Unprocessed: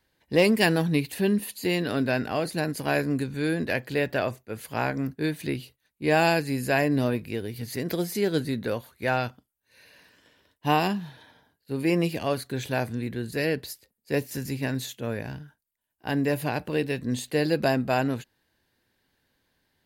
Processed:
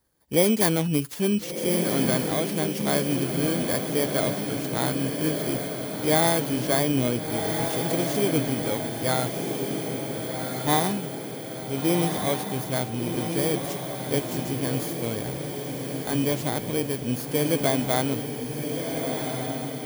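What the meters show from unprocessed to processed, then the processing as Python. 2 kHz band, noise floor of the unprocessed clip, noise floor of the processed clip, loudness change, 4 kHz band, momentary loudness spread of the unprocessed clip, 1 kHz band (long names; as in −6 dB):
−3.5 dB, −79 dBFS, −34 dBFS, +1.5 dB, +3.5 dB, 11 LU, +0.5 dB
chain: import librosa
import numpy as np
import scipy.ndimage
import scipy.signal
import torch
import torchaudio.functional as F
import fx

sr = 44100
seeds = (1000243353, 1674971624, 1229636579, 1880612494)

y = fx.bit_reversed(x, sr, seeds[0], block=16)
y = fx.echo_diffused(y, sr, ms=1436, feedback_pct=59, wet_db=-4.5)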